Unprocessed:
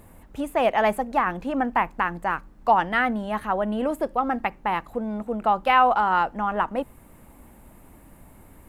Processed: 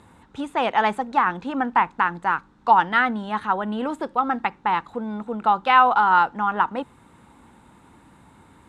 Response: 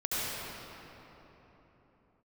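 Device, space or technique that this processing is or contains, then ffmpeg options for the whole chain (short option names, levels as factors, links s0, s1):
car door speaker: -af "highpass=90,equalizer=f=620:t=q:w=4:g=-8,equalizer=f=920:t=q:w=4:g=6,equalizer=f=1400:t=q:w=4:g=6,equalizer=f=3700:t=q:w=4:g=9,lowpass=f=8400:w=0.5412,lowpass=f=8400:w=1.3066"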